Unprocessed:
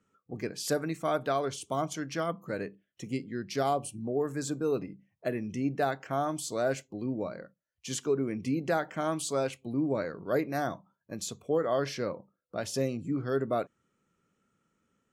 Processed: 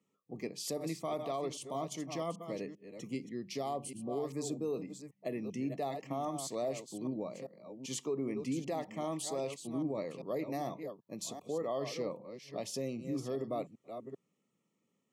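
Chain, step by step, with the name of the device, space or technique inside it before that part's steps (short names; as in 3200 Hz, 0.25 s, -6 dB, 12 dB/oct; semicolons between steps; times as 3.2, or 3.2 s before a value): reverse delay 0.393 s, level -10 dB; PA system with an anti-feedback notch (HPF 130 Hz 24 dB/oct; Butterworth band-stop 1500 Hz, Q 2.2; limiter -23 dBFS, peak gain reduction 6 dB); 7.89–8.4 bell 1000 Hz +4 dB 1.3 oct; gain -4.5 dB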